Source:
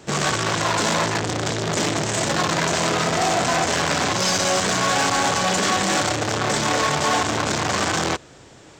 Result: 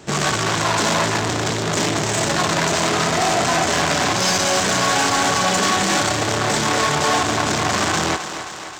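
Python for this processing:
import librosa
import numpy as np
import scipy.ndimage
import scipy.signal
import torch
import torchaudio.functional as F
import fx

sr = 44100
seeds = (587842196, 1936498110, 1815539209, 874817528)

p1 = fx.notch(x, sr, hz=510.0, q=12.0)
p2 = np.clip(p1, -10.0 ** (-21.5 / 20.0), 10.0 ** (-21.5 / 20.0))
p3 = p1 + (p2 * 10.0 ** (-9.0 / 20.0))
y = fx.echo_thinned(p3, sr, ms=264, feedback_pct=67, hz=280.0, wet_db=-9.5)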